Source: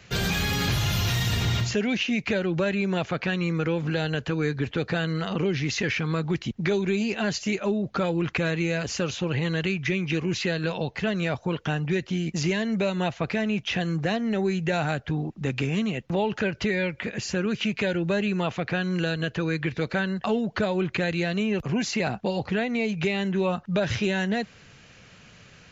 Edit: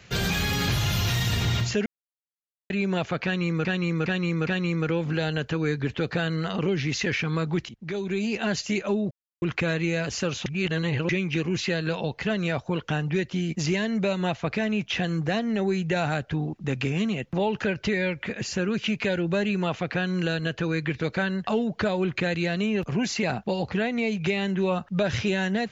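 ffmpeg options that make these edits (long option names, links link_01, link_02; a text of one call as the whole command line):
ffmpeg -i in.wav -filter_complex "[0:a]asplit=11[link_01][link_02][link_03][link_04][link_05][link_06][link_07][link_08][link_09][link_10][link_11];[link_01]atrim=end=1.86,asetpts=PTS-STARTPTS,afade=type=out:start_time=1.856:duration=0.004:curve=hsin[link_12];[link_02]atrim=start=1.86:end=2.7,asetpts=PTS-STARTPTS,volume=0[link_13];[link_03]atrim=start=2.7:end=3.652,asetpts=PTS-STARTPTS,afade=type=in:duration=0.004:curve=hsin[link_14];[link_04]atrim=start=3.238:end=3.652[link_15];[link_05]atrim=start=3.238:end=3.652[link_16];[link_06]atrim=start=3.238:end=6.46,asetpts=PTS-STARTPTS,afade=type=out:start_time=3.218:duration=0.004:curve=hsin:silence=0.149624[link_17];[link_07]atrim=start=6.46:end=7.88,asetpts=PTS-STARTPTS,afade=type=in:duration=0.67:silence=0.149624,afade=type=out:start_time=1.416:duration=0.004:curve=hsin[link_18];[link_08]atrim=start=7.88:end=8.19,asetpts=PTS-STARTPTS,volume=0[link_19];[link_09]atrim=start=8.19:end=9.232,asetpts=PTS-STARTPTS,afade=type=in:duration=0.004:curve=hsin[link_20];[link_10]atrim=start=9.228:end=9.862,asetpts=PTS-STARTPTS,areverse[link_21];[link_11]atrim=start=9.858[link_22];[link_12][link_13][link_14]concat=n=3:v=0:a=1[link_23];[link_23][link_15]acrossfade=duration=0.004:curve1=hsin:curve2=hsin[link_24];[link_24][link_16]acrossfade=duration=0.004:curve1=hsin:curve2=hsin[link_25];[link_17][link_18][link_19][link_20]concat=n=4:v=0:a=1[link_26];[link_25][link_26]acrossfade=duration=0.004:curve1=hsin:curve2=hsin[link_27];[link_27][link_21]acrossfade=duration=0.004:curve1=hsin:curve2=hsin[link_28];[link_28][link_22]acrossfade=duration=0.004:curve1=hsin:curve2=hsin" out.wav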